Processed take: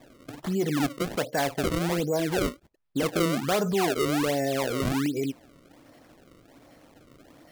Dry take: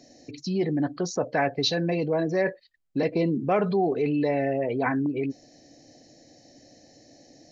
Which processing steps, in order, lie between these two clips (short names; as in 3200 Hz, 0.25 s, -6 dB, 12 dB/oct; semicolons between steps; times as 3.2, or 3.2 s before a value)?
in parallel at -3 dB: limiter -19.5 dBFS, peak gain reduction 8 dB; on the sum: decimation with a swept rate 30×, swing 160% 1.3 Hz; gain -5 dB